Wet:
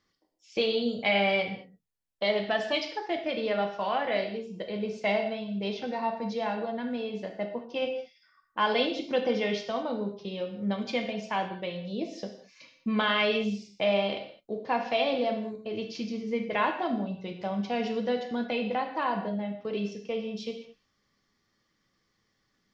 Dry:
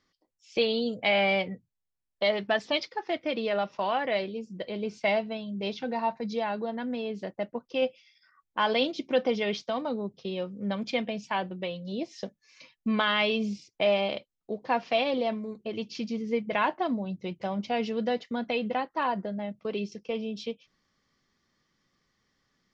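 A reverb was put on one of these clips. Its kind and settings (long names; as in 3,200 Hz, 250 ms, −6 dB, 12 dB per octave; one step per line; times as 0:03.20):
reverb whose tail is shaped and stops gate 240 ms falling, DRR 3.5 dB
level −2 dB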